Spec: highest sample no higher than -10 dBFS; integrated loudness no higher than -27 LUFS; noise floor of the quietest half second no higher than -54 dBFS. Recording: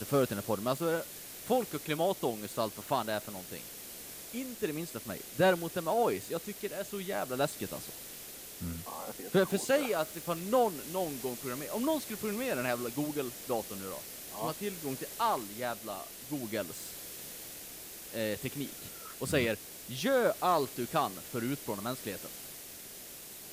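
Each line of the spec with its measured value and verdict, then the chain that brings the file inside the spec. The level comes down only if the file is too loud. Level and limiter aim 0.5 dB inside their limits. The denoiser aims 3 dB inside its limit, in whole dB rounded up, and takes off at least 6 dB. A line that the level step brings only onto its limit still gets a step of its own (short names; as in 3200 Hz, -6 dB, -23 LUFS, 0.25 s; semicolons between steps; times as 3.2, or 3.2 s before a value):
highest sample -15.5 dBFS: OK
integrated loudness -34.5 LUFS: OK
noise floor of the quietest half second -47 dBFS: fail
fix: denoiser 10 dB, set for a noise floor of -47 dBFS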